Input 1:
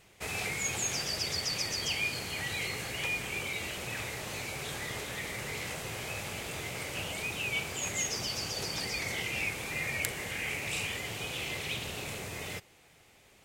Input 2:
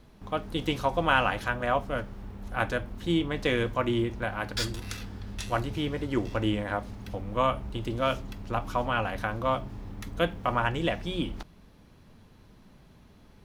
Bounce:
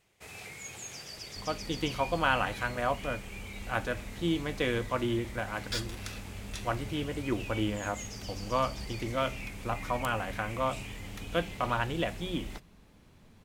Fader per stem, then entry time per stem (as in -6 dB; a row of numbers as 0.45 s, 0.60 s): -10.5 dB, -3.5 dB; 0.00 s, 1.15 s